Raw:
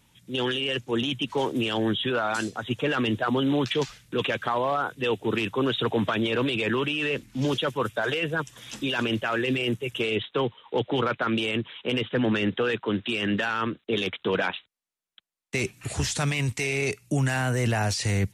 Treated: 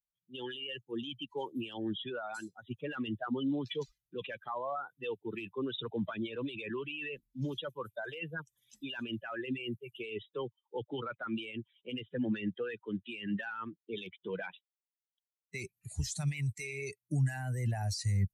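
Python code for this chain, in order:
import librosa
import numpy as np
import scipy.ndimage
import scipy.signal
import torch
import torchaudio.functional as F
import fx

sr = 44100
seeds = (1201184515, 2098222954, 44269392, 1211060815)

y = fx.bin_expand(x, sr, power=2.0)
y = fx.bass_treble(y, sr, bass_db=7, treble_db=3)
y = y * 10.0 ** (-8.5 / 20.0)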